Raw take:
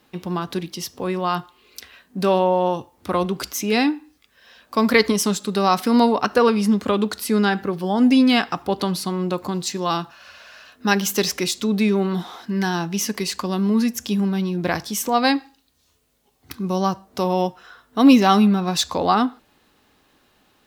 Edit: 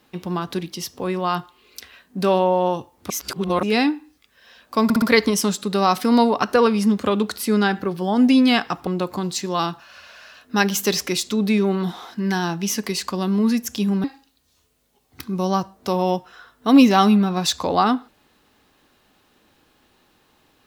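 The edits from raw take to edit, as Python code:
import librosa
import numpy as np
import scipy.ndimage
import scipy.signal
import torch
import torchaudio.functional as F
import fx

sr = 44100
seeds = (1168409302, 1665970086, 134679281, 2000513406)

y = fx.edit(x, sr, fx.reverse_span(start_s=3.1, length_s=0.53),
    fx.stutter(start_s=4.84, slice_s=0.06, count=4),
    fx.cut(start_s=8.69, length_s=0.49),
    fx.cut(start_s=14.35, length_s=1.0), tone=tone)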